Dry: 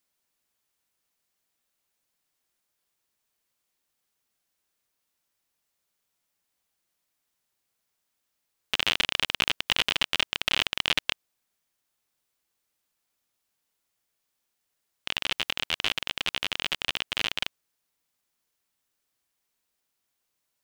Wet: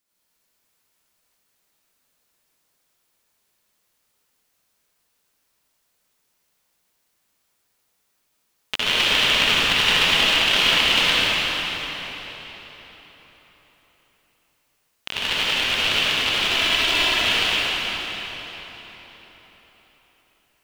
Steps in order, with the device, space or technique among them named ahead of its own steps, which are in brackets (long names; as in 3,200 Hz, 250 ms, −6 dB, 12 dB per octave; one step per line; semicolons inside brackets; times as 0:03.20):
0:16.38–0:17.06: comb filter 3 ms, depth 85%
cathedral (convolution reverb RT60 4.4 s, pre-delay 58 ms, DRR −10 dB)